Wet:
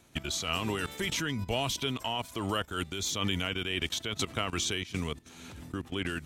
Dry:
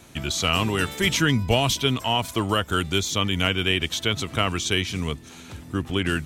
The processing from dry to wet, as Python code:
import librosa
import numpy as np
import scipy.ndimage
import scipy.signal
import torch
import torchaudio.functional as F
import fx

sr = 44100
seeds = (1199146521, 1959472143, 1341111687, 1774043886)

y = fx.dynamic_eq(x, sr, hz=120.0, q=0.9, threshold_db=-35.0, ratio=4.0, max_db=-4)
y = fx.level_steps(y, sr, step_db=15)
y = fx.am_noise(y, sr, seeds[0], hz=5.7, depth_pct=60)
y = y * 10.0 ** (1.0 / 20.0)